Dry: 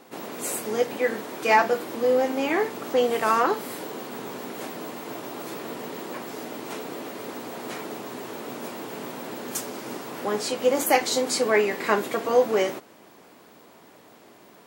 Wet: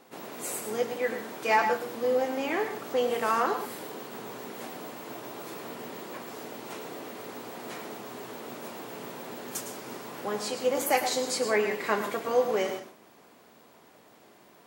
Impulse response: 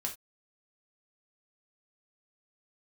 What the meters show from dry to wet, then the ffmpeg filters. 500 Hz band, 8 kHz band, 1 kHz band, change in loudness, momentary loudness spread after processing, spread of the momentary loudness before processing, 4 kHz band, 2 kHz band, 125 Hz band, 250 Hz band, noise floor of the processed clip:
−5.0 dB, −4.5 dB, −4.0 dB, −4.5 dB, 14 LU, 14 LU, −4.5 dB, −4.5 dB, −4.5 dB, −6.0 dB, −57 dBFS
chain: -filter_complex "[0:a]equalizer=frequency=300:width=2.2:gain=-2.5,asplit=2[link_01][link_02];[1:a]atrim=start_sample=2205,adelay=107[link_03];[link_02][link_03]afir=irnorm=-1:irlink=0,volume=-9dB[link_04];[link_01][link_04]amix=inputs=2:normalize=0,volume=-5dB"

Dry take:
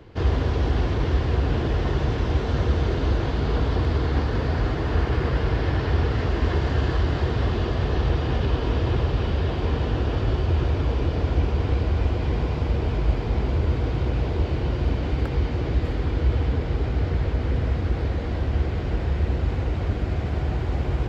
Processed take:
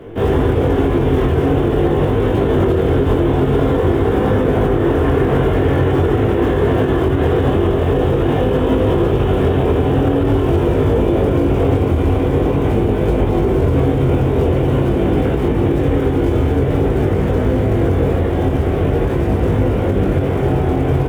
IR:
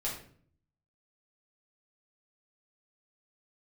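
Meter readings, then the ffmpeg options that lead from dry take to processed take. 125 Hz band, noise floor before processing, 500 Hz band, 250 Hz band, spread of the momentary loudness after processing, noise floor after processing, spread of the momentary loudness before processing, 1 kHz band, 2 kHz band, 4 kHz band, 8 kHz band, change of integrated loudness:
+6.5 dB, −27 dBFS, +14.5 dB, +13.5 dB, 2 LU, −17 dBFS, 3 LU, +10.0 dB, +6.5 dB, +3.5 dB, can't be measured, +9.0 dB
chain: -filter_complex "[0:a]lowshelf=frequency=170:gain=-4,aresample=8000,aresample=44100,areverse,acompressor=mode=upward:threshold=-27dB:ratio=2.5,areverse,acrusher=bits=7:mode=log:mix=0:aa=0.000001,flanger=delay=19.5:depth=3.2:speed=0.46,asplit=2[link_01][link_02];[link_02]equalizer=frequency=310:width=0.33:gain=14.5[link_03];[1:a]atrim=start_sample=2205,atrim=end_sample=3528,asetrate=26901,aresample=44100[link_04];[link_03][link_04]afir=irnorm=-1:irlink=0,volume=-5dB[link_05];[link_01][link_05]amix=inputs=2:normalize=0,alimiter=limit=-10dB:level=0:latency=1:release=84,volume=4dB"

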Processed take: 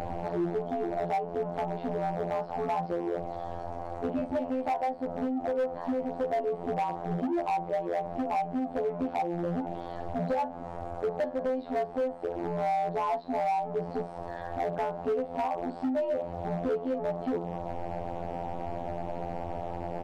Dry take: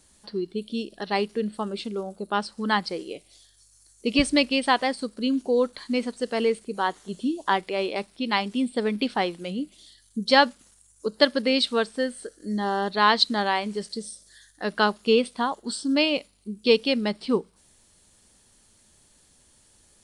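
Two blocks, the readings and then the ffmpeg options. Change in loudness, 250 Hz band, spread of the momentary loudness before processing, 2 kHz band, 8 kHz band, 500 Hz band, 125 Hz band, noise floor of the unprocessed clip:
−7.0 dB, −7.0 dB, 13 LU, −16.0 dB, below −20 dB, −4.0 dB, +2.0 dB, −60 dBFS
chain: -filter_complex "[0:a]aeval=exprs='val(0)+0.5*0.0708*sgn(val(0))':channel_layout=same,lowpass=frequency=730:width_type=q:width=4.9,afftfilt=real='hypot(re,im)*cos(PI*b)':imag='0':win_size=2048:overlap=0.75,acompressor=threshold=-28dB:ratio=8,asplit=2[link_01][link_02];[link_02]adelay=41,volume=-10dB[link_03];[link_01][link_03]amix=inputs=2:normalize=0,volume=26.5dB,asoftclip=hard,volume=-26.5dB,volume=2.5dB"

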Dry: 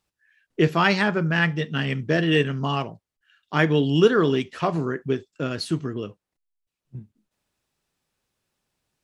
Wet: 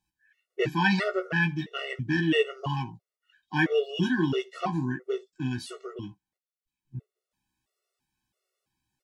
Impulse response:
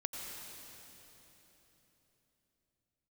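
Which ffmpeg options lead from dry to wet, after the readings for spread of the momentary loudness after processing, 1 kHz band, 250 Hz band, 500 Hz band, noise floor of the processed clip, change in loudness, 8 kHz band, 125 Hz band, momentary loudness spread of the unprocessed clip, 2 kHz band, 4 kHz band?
18 LU, −6.0 dB, −5.0 dB, −6.5 dB, below −85 dBFS, −5.5 dB, −5.5 dB, −6.5 dB, 11 LU, −3.5 dB, −5.5 dB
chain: -filter_complex "[0:a]asplit=2[link_01][link_02];[link_02]adelay=16,volume=-6.5dB[link_03];[link_01][link_03]amix=inputs=2:normalize=0,afftfilt=real='re*gt(sin(2*PI*1.5*pts/sr)*(1-2*mod(floor(b*sr/1024/370),2)),0)':imag='im*gt(sin(2*PI*1.5*pts/sr)*(1-2*mod(floor(b*sr/1024/370),2)),0)':win_size=1024:overlap=0.75,volume=-2.5dB"

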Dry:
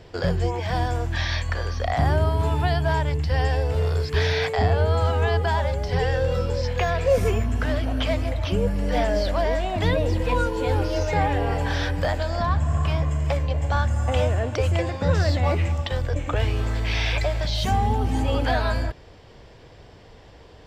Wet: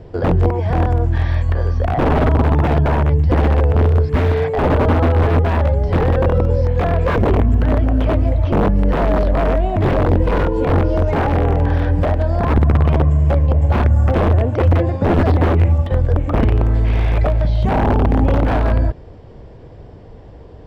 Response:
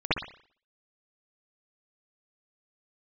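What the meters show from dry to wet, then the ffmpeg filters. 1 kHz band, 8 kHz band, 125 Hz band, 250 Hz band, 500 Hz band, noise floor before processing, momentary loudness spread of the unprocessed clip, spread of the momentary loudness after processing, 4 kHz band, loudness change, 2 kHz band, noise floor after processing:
+5.0 dB, can't be measured, +8.5 dB, +10.5 dB, +6.0 dB, −47 dBFS, 4 LU, 3 LU, −5.5 dB, +7.5 dB, +1.0 dB, −38 dBFS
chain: -filter_complex "[0:a]aeval=exprs='(mod(5.62*val(0)+1,2)-1)/5.62':channel_layout=same,tiltshelf=frequency=1200:gain=9.5,acrossover=split=3400[link_01][link_02];[link_02]acompressor=threshold=-51dB:ratio=4:attack=1:release=60[link_03];[link_01][link_03]amix=inputs=2:normalize=0,volume=1dB"

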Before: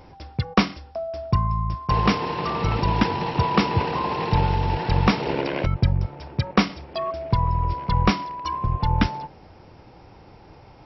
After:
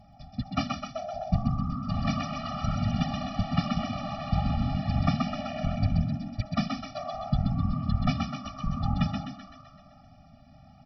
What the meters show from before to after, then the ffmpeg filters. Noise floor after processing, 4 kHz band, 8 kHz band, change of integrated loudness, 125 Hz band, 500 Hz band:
−54 dBFS, −7.5 dB, can't be measured, −6.5 dB, −5.0 dB, −10.0 dB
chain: -filter_complex "[0:a]equalizer=frequency=1700:width=2.3:gain=-4.5,afftfilt=real='hypot(re,im)*cos(2*PI*random(0))':imag='hypot(re,im)*sin(2*PI*random(1))':win_size=512:overlap=0.75,asplit=2[link_01][link_02];[link_02]asplit=8[link_03][link_04][link_05][link_06][link_07][link_08][link_09][link_10];[link_03]adelay=128,afreqshift=61,volume=-4dB[link_11];[link_04]adelay=256,afreqshift=122,volume=-8.9dB[link_12];[link_05]adelay=384,afreqshift=183,volume=-13.8dB[link_13];[link_06]adelay=512,afreqshift=244,volume=-18.6dB[link_14];[link_07]adelay=640,afreqshift=305,volume=-23.5dB[link_15];[link_08]adelay=768,afreqshift=366,volume=-28.4dB[link_16];[link_09]adelay=896,afreqshift=427,volume=-33.3dB[link_17];[link_10]adelay=1024,afreqshift=488,volume=-38.2dB[link_18];[link_11][link_12][link_13][link_14][link_15][link_16][link_17][link_18]amix=inputs=8:normalize=0[link_19];[link_01][link_19]amix=inputs=2:normalize=0,afftfilt=real='re*eq(mod(floor(b*sr/1024/280),2),0)':imag='im*eq(mod(floor(b*sr/1024/280),2),0)':win_size=1024:overlap=0.75"

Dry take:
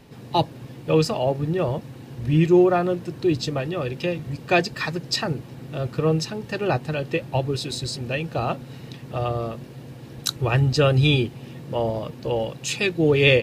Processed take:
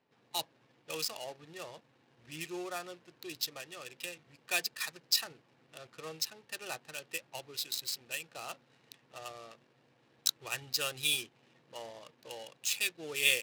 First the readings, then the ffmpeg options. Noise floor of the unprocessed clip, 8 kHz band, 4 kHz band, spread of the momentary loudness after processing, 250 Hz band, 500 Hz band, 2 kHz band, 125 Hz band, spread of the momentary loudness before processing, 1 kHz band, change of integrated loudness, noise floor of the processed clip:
−42 dBFS, −1.0 dB, −6.0 dB, 18 LU, −27.5 dB, −23.5 dB, −9.5 dB, −34.0 dB, 15 LU, −18.0 dB, −12.5 dB, −69 dBFS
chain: -af "adynamicsmooth=sensitivity=7.5:basefreq=950,aderivative"

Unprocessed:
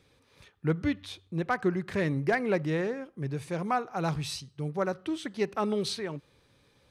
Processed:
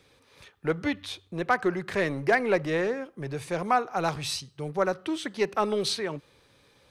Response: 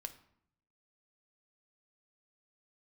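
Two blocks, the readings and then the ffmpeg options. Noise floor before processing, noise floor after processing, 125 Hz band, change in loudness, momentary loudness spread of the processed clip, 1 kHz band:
−66 dBFS, −63 dBFS, −3.5 dB, +3.0 dB, 10 LU, +5.0 dB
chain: -filter_complex "[0:a]acrossover=split=330[link_01][link_02];[link_01]volume=35.5dB,asoftclip=hard,volume=-35.5dB[link_03];[link_02]acontrast=30[link_04];[link_03][link_04]amix=inputs=2:normalize=0"

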